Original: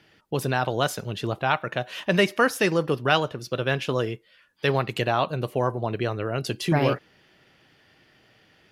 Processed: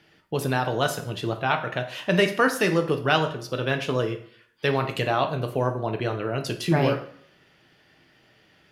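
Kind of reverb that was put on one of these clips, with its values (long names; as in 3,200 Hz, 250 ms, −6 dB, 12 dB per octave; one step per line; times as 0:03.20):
dense smooth reverb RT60 0.58 s, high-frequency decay 0.8×, DRR 5.5 dB
level −1 dB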